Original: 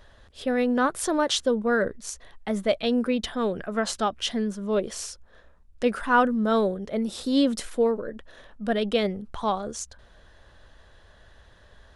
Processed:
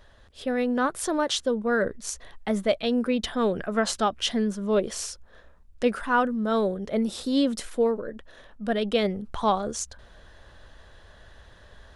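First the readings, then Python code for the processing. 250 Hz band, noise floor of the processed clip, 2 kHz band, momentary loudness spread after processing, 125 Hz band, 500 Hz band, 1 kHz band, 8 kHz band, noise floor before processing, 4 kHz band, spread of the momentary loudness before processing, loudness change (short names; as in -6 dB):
-0.5 dB, -53 dBFS, -1.0 dB, 10 LU, +0.5 dB, -0.5 dB, -0.5 dB, +0.5 dB, -55 dBFS, 0.0 dB, 12 LU, -0.5 dB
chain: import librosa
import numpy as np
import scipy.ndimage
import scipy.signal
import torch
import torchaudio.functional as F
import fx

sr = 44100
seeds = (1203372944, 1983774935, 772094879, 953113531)

y = fx.rider(x, sr, range_db=3, speed_s=0.5)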